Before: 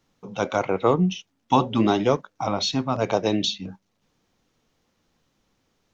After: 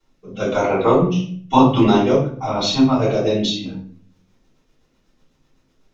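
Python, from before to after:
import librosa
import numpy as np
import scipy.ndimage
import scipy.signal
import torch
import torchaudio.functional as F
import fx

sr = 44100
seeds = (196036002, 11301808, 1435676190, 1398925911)

y = fx.rotary_switch(x, sr, hz=1.0, then_hz=8.0, switch_at_s=3.48)
y = fx.room_shoebox(y, sr, seeds[0], volume_m3=61.0, walls='mixed', distance_m=3.3)
y = y * 10.0 ** (-7.5 / 20.0)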